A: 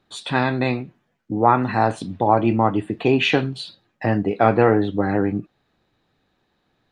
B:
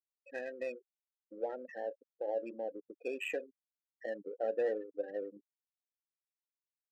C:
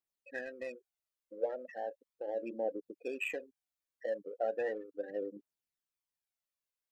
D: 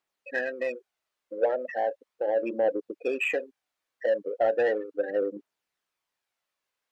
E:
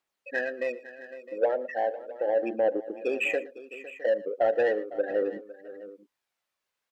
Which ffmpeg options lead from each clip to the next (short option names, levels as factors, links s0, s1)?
-filter_complex "[0:a]asplit=3[s0][s1][s2];[s0]bandpass=f=530:t=q:w=8,volume=1[s3];[s1]bandpass=f=1840:t=q:w=8,volume=0.501[s4];[s2]bandpass=f=2480:t=q:w=8,volume=0.355[s5];[s3][s4][s5]amix=inputs=3:normalize=0,afftfilt=real='re*gte(hypot(re,im),0.0355)':imag='im*gte(hypot(re,im),0.0355)':win_size=1024:overlap=0.75,adynamicsmooth=sensitivity=7:basefreq=2300,volume=0.376"
-af "aphaser=in_gain=1:out_gain=1:delay=2:decay=0.47:speed=0.37:type=triangular"
-filter_complex "[0:a]asplit=2[s0][s1];[s1]highpass=f=720:p=1,volume=5.01,asoftclip=type=tanh:threshold=0.0841[s2];[s0][s2]amix=inputs=2:normalize=0,lowpass=f=1700:p=1,volume=0.501,volume=2.51"
-af "aecho=1:1:116|506|661:0.106|0.15|0.141"